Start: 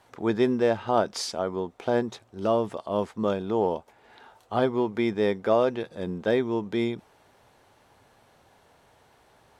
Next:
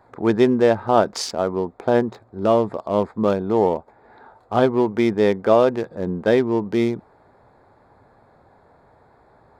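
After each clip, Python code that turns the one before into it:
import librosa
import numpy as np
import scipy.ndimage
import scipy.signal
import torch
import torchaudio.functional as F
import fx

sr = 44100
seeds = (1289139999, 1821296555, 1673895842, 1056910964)

y = fx.wiener(x, sr, points=15)
y = F.gain(torch.from_numpy(y), 7.0).numpy()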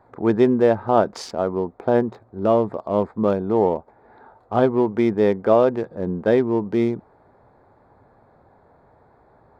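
y = fx.high_shelf(x, sr, hz=2400.0, db=-10.0)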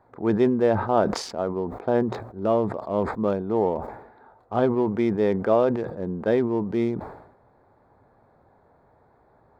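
y = fx.sustainer(x, sr, db_per_s=72.0)
y = F.gain(torch.from_numpy(y), -4.5).numpy()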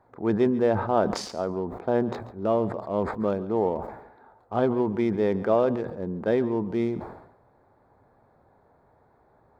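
y = fx.echo_feedback(x, sr, ms=139, feedback_pct=15, wet_db=-17)
y = F.gain(torch.from_numpy(y), -2.0).numpy()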